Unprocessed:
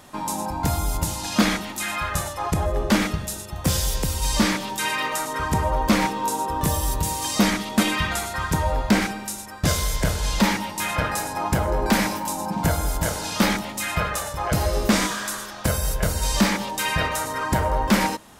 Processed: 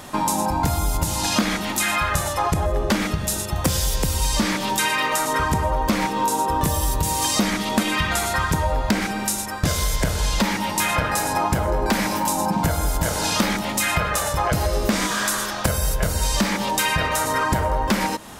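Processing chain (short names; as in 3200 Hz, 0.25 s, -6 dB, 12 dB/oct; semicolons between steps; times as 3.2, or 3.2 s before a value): compressor 6:1, threshold -27 dBFS, peak gain reduction 13.5 dB; gain +9 dB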